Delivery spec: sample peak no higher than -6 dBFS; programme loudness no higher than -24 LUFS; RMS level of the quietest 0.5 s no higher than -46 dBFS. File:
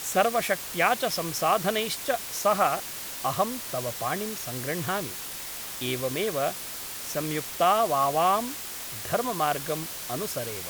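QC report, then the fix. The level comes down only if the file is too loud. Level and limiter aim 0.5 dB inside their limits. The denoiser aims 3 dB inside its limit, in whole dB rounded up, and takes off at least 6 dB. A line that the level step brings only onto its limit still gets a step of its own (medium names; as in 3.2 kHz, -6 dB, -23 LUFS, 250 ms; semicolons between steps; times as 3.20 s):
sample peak -7.5 dBFS: pass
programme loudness -27.5 LUFS: pass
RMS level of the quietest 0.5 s -37 dBFS: fail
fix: noise reduction 12 dB, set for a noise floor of -37 dBFS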